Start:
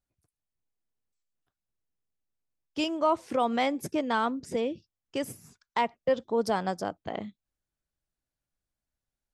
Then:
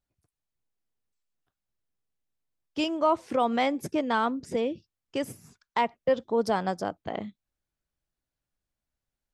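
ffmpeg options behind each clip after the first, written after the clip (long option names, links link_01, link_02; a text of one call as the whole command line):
ffmpeg -i in.wav -af "highshelf=frequency=6200:gain=-5,volume=1.5dB" out.wav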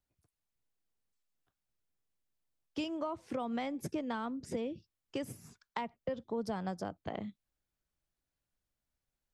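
ffmpeg -i in.wav -filter_complex "[0:a]acrossover=split=190[link_01][link_02];[link_02]acompressor=threshold=-35dB:ratio=5[link_03];[link_01][link_03]amix=inputs=2:normalize=0,volume=-1.5dB" out.wav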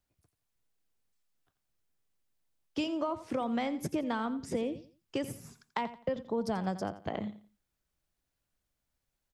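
ffmpeg -i in.wav -af "aecho=1:1:86|172|258:0.2|0.0559|0.0156,volume=4dB" out.wav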